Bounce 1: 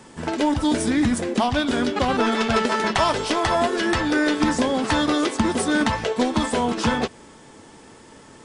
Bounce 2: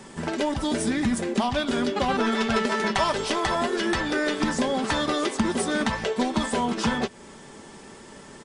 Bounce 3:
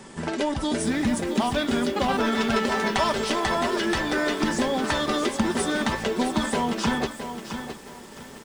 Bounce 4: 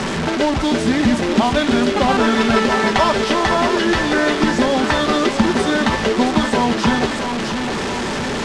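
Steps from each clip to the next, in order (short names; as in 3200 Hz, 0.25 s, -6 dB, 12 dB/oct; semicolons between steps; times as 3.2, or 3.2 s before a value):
comb 5.1 ms, depth 40%; in parallel at +2 dB: compressor, threshold -31 dBFS, peak gain reduction 16 dB; on the sum: gain -6 dB
lo-fi delay 0.666 s, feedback 35%, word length 7-bit, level -8.5 dB
delta modulation 64 kbps, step -23 dBFS; air absorption 110 m; gain +8.5 dB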